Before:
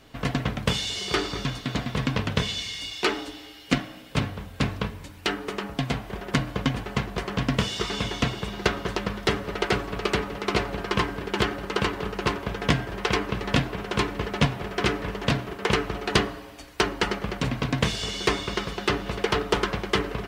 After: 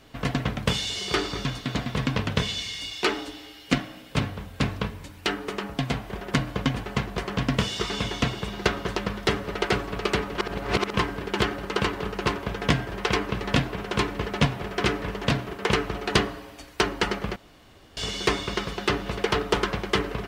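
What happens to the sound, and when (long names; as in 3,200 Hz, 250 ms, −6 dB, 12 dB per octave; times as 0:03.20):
0:10.38–0:10.94: reverse
0:17.36–0:17.97: fill with room tone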